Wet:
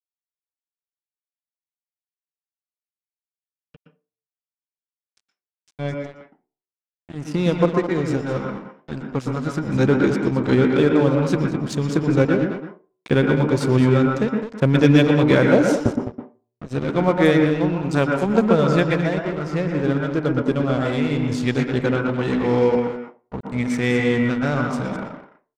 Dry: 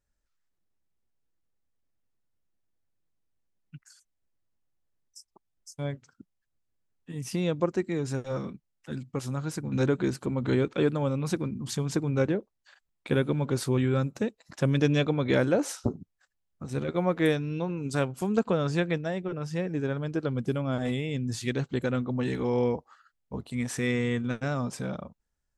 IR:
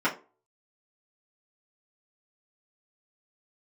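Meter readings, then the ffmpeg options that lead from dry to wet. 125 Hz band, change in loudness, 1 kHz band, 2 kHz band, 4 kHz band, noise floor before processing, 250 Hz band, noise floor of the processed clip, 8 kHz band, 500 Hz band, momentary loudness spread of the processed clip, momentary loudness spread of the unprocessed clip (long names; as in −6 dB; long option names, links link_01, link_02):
+8.0 dB, +9.5 dB, +10.5 dB, +10.0 dB, +7.0 dB, −79 dBFS, +10.0 dB, below −85 dBFS, +1.0 dB, +9.5 dB, 13 LU, 11 LU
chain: -filter_complex "[0:a]agate=range=-6dB:threshold=-53dB:ratio=16:detection=peak,asplit=2[link_01][link_02];[link_02]adelay=209.9,volume=-9dB,highshelf=frequency=4000:gain=-4.72[link_03];[link_01][link_03]amix=inputs=2:normalize=0,aeval=exprs='sgn(val(0))*max(abs(val(0))-0.01,0)':channel_layout=same,asplit=2[link_04][link_05];[1:a]atrim=start_sample=2205,adelay=114[link_06];[link_05][link_06]afir=irnorm=-1:irlink=0,volume=-15.5dB[link_07];[link_04][link_07]amix=inputs=2:normalize=0,adynamicsmooth=sensitivity=4:basefreq=6500,volume=8.5dB"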